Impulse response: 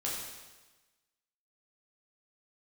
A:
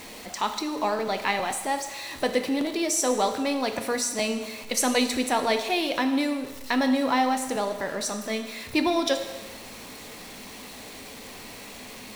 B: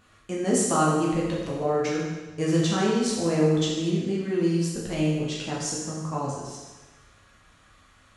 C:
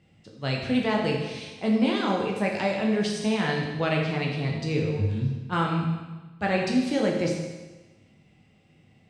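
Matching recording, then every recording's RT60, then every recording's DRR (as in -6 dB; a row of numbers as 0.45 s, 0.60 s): B; 1.2 s, 1.2 s, 1.2 s; 6.0 dB, -5.5 dB, -1.0 dB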